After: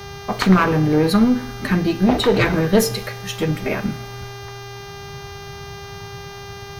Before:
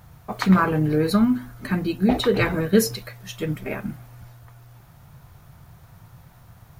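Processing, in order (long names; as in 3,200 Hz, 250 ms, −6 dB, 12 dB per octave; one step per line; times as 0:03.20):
one-sided soft clipper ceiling −19.5 dBFS
high-shelf EQ 8,300 Hz −4 dB
in parallel at −2.5 dB: downward compressor, threshold −30 dBFS, peak gain reduction 15.5 dB
on the sum: four-comb reverb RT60 0.84 s, DRR 16.5 dB
hum with harmonics 400 Hz, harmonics 16, −41 dBFS −4 dB per octave
level +4.5 dB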